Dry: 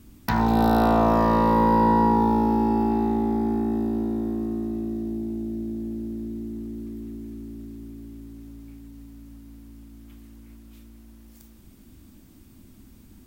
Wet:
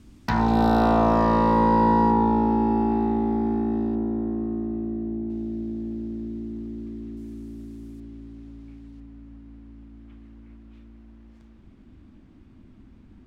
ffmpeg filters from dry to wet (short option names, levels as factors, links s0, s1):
-af "asetnsamples=n=441:p=0,asendcmd='2.11 lowpass f 3500;3.95 lowpass f 1800;5.3 lowpass f 4500;7.17 lowpass f 9800;8 lowpass f 3900;9 lowpass f 2400',lowpass=7100"